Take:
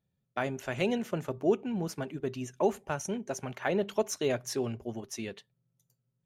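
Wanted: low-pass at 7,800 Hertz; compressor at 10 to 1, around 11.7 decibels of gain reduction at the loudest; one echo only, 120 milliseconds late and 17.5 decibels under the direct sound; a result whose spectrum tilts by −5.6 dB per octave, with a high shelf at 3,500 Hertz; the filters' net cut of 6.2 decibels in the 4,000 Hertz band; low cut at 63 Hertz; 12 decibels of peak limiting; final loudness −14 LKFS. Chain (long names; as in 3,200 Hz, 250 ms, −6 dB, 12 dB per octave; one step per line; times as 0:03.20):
high-pass filter 63 Hz
low-pass filter 7,800 Hz
high-shelf EQ 3,500 Hz −4 dB
parametric band 4,000 Hz −6 dB
downward compressor 10 to 1, threshold −33 dBFS
brickwall limiter −31 dBFS
single-tap delay 120 ms −17.5 dB
level +28 dB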